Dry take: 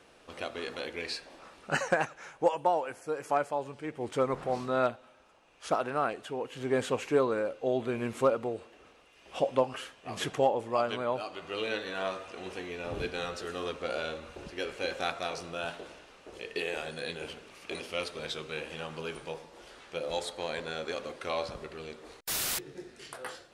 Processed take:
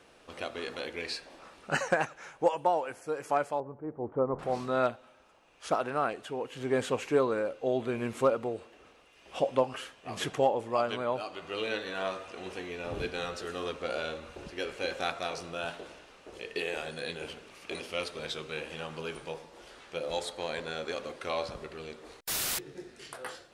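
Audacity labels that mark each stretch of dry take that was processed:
3.600000	4.390000	LPF 1100 Hz 24 dB/oct

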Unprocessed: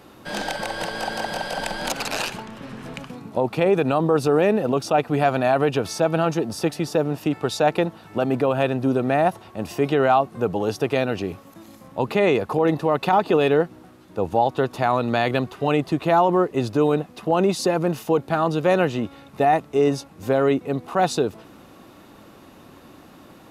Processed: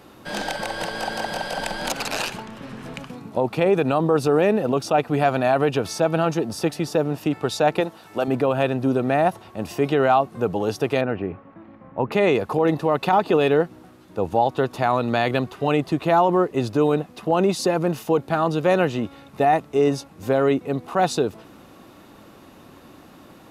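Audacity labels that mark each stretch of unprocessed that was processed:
7.800000	8.280000	tone controls bass -9 dB, treble +5 dB
11.010000	12.120000	LPF 2200 Hz 24 dB/oct

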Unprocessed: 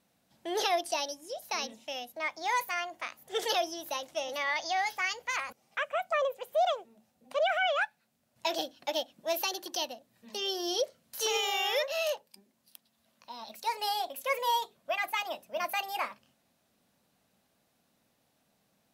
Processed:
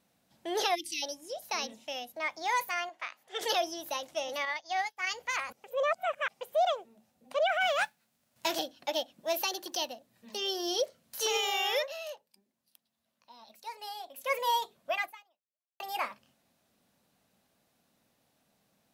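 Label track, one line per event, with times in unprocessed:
0.750000	1.030000	spectral delete 360–1900 Hz
2.890000	3.410000	band-pass 1900 Hz, Q 0.54
4.450000	5.070000	upward expander 2.5:1, over -48 dBFS
5.640000	6.410000	reverse
7.600000	8.580000	spectral whitening exponent 0.6
9.140000	11.160000	block floating point 7-bit
11.760000	14.320000	dip -10 dB, fades 0.22 s
15.010000	15.800000	fade out exponential

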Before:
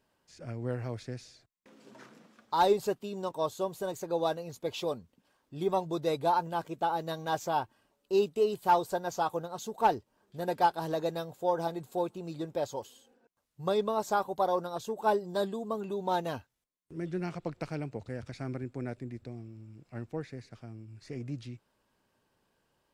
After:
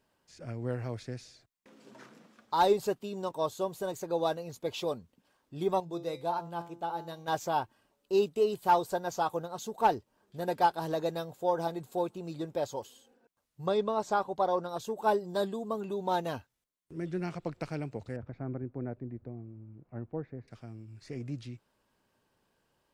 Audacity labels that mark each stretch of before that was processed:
5.800000	7.280000	resonator 170 Hz, decay 0.43 s
13.660000	14.690000	air absorption 55 m
18.160000	20.480000	LPF 1100 Hz

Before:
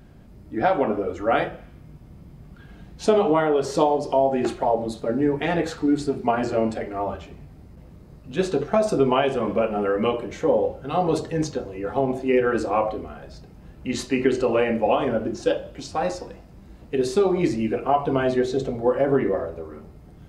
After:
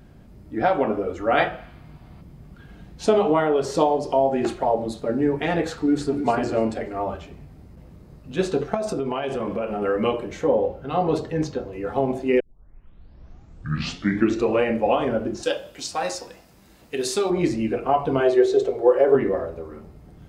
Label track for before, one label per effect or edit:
1.370000	2.210000	spectral gain 620–4900 Hz +7 dB
5.670000	6.250000	echo throw 0.29 s, feedback 30%, level -8.5 dB
8.740000	9.820000	compressor, threshold -22 dBFS
10.470000	11.730000	bell 8800 Hz -8.5 dB 1.4 oct
12.400000	12.400000	tape start 2.20 s
15.430000	17.300000	tilt +3 dB/oct
18.200000	19.150000	resonant low shelf 290 Hz -9.5 dB, Q 3

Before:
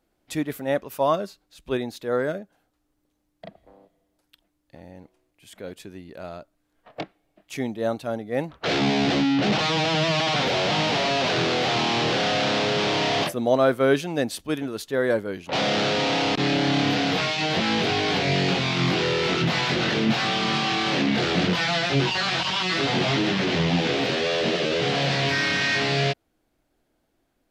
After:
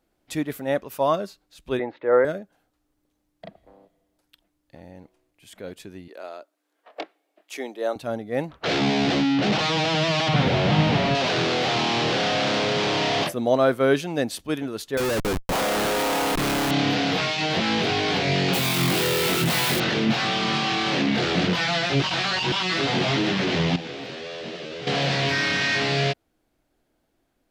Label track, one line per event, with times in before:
1.790000	2.250000	speaker cabinet 160–2400 Hz, peaks and dips at 210 Hz -9 dB, 330 Hz +5 dB, 540 Hz +10 dB, 890 Hz +8 dB, 1300 Hz +5 dB, 2000 Hz +8 dB
6.080000	7.960000	HPF 330 Hz 24 dB/oct
10.280000	11.150000	tone controls bass +12 dB, treble -8 dB
12.290000	12.970000	Doppler distortion depth 0.18 ms
14.970000	16.710000	Schmitt trigger flips at -30.5 dBFS
18.530000	19.800000	switching spikes of -19 dBFS
22.020000	22.520000	reverse
23.760000	24.870000	gain -11 dB

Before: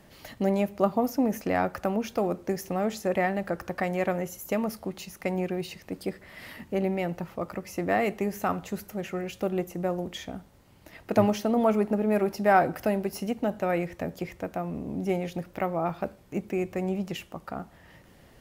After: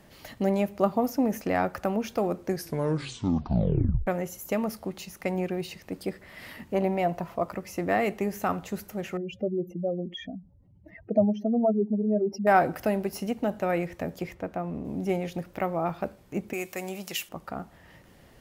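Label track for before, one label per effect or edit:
2.470000	2.470000	tape stop 1.60 s
6.730000	7.500000	small resonant body resonances 690/1000 Hz, height 15 dB -> 11 dB
9.170000	12.470000	spectral contrast raised exponent 2.7
14.340000	14.850000	high shelf 4600 Hz -11.5 dB
16.530000	17.290000	tilt +4 dB/oct

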